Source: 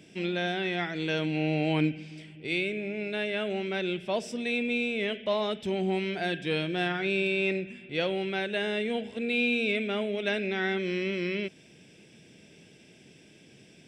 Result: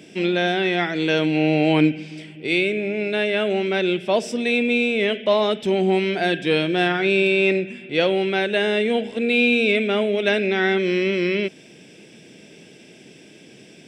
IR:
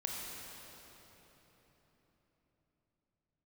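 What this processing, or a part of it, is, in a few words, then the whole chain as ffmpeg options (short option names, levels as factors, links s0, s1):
filter by subtraction: -filter_complex "[0:a]asplit=2[s0][s1];[s1]lowpass=310,volume=-1[s2];[s0][s2]amix=inputs=2:normalize=0,volume=2.66"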